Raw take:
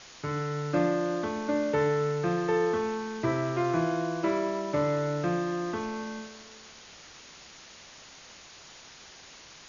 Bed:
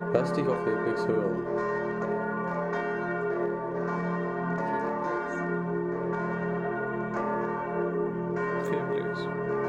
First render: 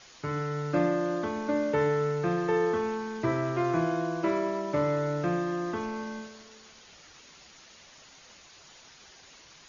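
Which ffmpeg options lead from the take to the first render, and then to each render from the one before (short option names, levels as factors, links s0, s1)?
-af "afftdn=nr=6:nf=-50"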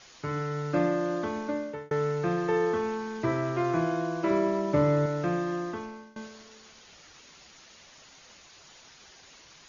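-filter_complex "[0:a]asettb=1/sr,asplit=3[s0][s1][s2];[s0]atrim=end=4.304[s3];[s1]atrim=start=4.3:end=5.06,asetpts=PTS-STARTPTS,afade=t=in:d=0.004:c=qsin,afade=t=out:st=0.756:d=0.004:c=qsin,lowshelf=f=400:g=7.5[s4];[s2]atrim=start=5.056[s5];[s3][s4]acrossfade=d=0.004:c1=hsin:c2=qsin[s6];[s6][s5]acrossfade=d=0.004:c1=qsin:c2=hsin,asplit=3[s7][s8][s9];[s7]atrim=end=1.91,asetpts=PTS-STARTPTS,afade=t=out:st=1.36:d=0.55[s10];[s8]atrim=start=1.91:end=6.16,asetpts=PTS-STARTPTS,afade=t=in:d=0.004:c=hsin,afade=t=out:st=3.65:d=0.6:silence=0.0707946[s11];[s9]atrim=start=6.16,asetpts=PTS-STARTPTS,afade=t=in:d=0.004:c=hsin:silence=0.0707946[s12];[s10][s11][s12]concat=n=3:v=0:a=1"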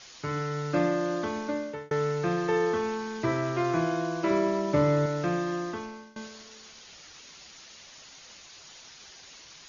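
-af "lowpass=6200,highshelf=f=4000:g=11"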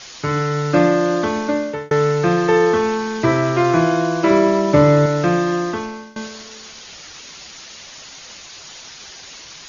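-af "volume=3.76"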